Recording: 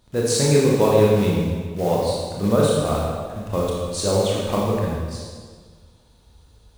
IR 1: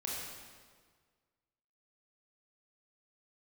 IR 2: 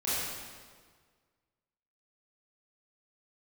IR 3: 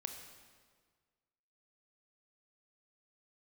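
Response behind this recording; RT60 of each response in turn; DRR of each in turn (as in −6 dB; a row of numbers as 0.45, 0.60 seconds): 1; 1.7, 1.7, 1.7 seconds; −4.5, −11.5, 5.0 decibels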